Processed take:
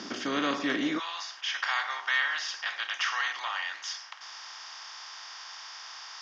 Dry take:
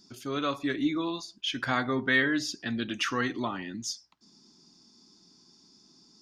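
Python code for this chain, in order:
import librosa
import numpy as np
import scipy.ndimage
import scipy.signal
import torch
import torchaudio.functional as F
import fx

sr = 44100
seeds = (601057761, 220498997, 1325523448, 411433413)

y = fx.bin_compress(x, sr, power=0.4)
y = fx.ellip_bandpass(y, sr, low_hz=fx.steps((0.0, 180.0), (0.98, 850.0)), high_hz=5900.0, order=3, stop_db=60)
y = y * 10.0 ** (-4.0 / 20.0)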